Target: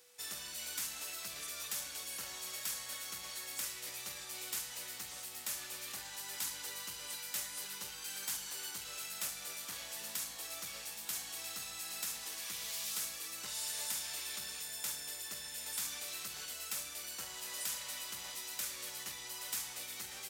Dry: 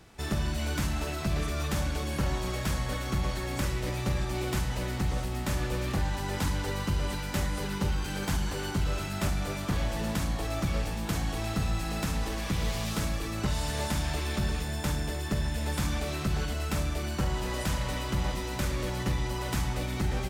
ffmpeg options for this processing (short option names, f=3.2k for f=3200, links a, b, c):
-af "aderivative,aeval=exprs='val(0)+0.000316*sin(2*PI*490*n/s)':c=same,volume=1.5dB"